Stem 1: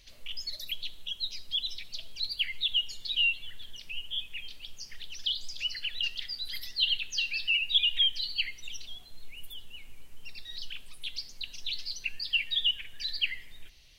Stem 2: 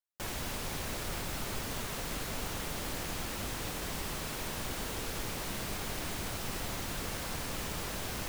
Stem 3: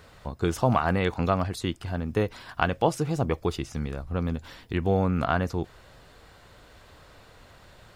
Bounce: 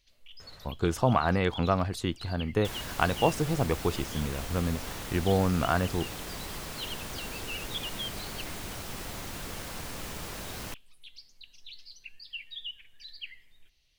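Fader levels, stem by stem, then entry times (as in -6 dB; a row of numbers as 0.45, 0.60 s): -12.5, -1.5, -1.5 dB; 0.00, 2.45, 0.40 s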